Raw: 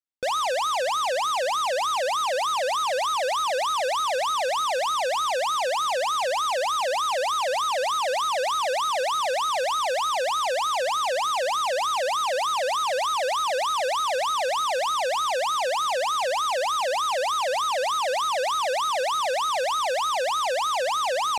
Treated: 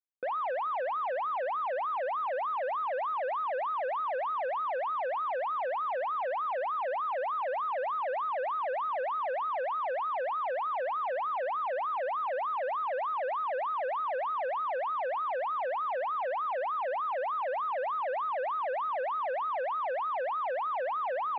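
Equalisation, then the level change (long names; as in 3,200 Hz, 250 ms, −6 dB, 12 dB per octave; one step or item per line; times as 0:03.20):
high-pass filter 260 Hz 12 dB per octave
low-pass filter 1,900 Hz 24 dB per octave
−6.5 dB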